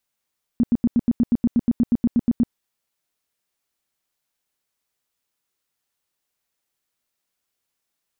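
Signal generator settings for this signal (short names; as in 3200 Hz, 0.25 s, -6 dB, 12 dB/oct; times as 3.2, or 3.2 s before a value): tone bursts 237 Hz, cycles 8, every 0.12 s, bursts 16, -13 dBFS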